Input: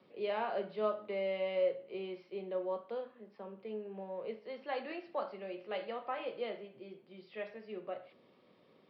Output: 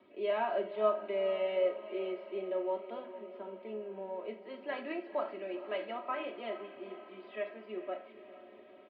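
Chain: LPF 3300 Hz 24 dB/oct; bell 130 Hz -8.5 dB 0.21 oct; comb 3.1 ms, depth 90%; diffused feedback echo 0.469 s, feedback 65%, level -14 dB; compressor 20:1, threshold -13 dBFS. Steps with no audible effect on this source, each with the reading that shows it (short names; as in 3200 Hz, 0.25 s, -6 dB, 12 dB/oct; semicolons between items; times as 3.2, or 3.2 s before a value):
compressor, threshold -13 dBFS: input peak -17.0 dBFS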